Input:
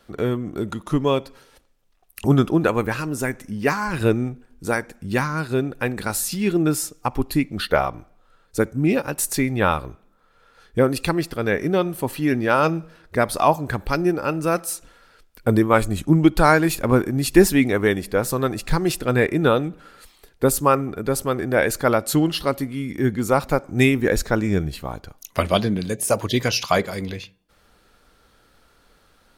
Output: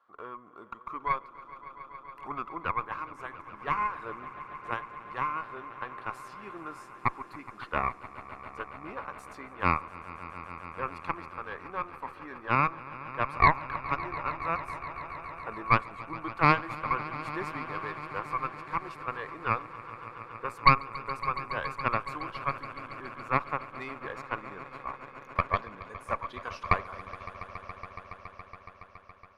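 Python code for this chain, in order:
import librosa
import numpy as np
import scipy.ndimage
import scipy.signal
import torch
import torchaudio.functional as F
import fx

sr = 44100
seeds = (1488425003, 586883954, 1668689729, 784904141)

y = fx.bandpass_q(x, sr, hz=1100.0, q=8.0)
y = fx.cheby_harmonics(y, sr, harmonics=(4,), levels_db=(-9,), full_scale_db=-10.5)
y = fx.echo_swell(y, sr, ms=140, loudest=5, wet_db=-18.0)
y = y * 10.0 ** (2.0 / 20.0)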